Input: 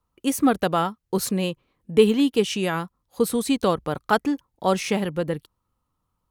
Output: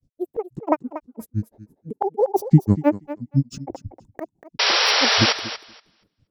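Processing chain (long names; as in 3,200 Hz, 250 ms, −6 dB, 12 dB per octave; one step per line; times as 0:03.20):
drawn EQ curve 120 Hz 0 dB, 190 Hz +14 dB, 440 Hz +13 dB, 790 Hz −7 dB, 3,300 Hz −21 dB, 9,800 Hz −4 dB, 16,000 Hz −11 dB
in parallel at +2 dB: brickwall limiter −19.5 dBFS, peak gain reduction 27.5 dB
on the sum: volume swells 474 ms
granular cloud 100 ms, grains 6 per second, pitch spread up and down by 12 semitones
sound drawn into the spectrogram noise, 0:04.59–0:05.33, 410–5,800 Hz −21 dBFS
on a send: feedback echo with a high-pass in the loop 237 ms, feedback 15%, high-pass 260 Hz, level −12 dB
on the sum: level +2.5 dB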